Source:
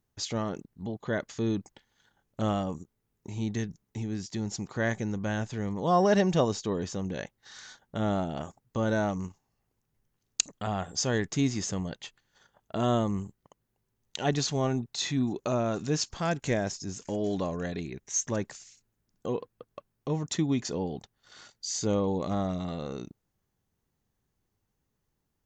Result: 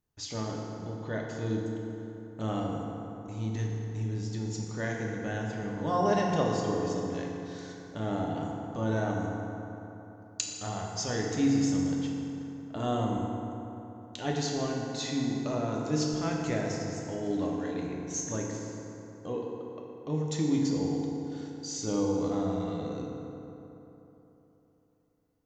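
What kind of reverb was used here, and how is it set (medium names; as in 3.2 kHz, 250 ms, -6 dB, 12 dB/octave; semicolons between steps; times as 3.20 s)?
FDN reverb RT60 3.4 s, high-frequency decay 0.5×, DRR -2 dB; trim -6.5 dB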